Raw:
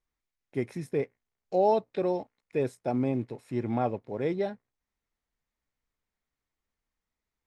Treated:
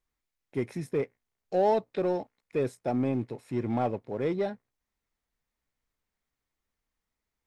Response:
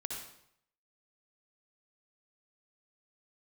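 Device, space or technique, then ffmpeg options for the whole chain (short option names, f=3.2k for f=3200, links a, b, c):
parallel distortion: -filter_complex "[0:a]asplit=2[a][b];[b]asoftclip=type=hard:threshold=-29.5dB,volume=-6.5dB[c];[a][c]amix=inputs=2:normalize=0,volume=-2dB"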